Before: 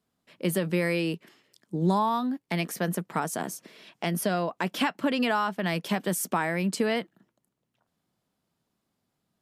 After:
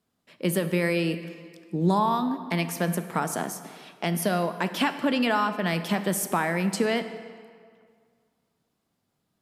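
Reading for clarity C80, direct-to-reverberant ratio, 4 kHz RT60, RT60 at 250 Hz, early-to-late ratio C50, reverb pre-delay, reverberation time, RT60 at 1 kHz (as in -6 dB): 12.0 dB, 10.0 dB, 1.4 s, 1.9 s, 11.0 dB, 22 ms, 2.1 s, 2.1 s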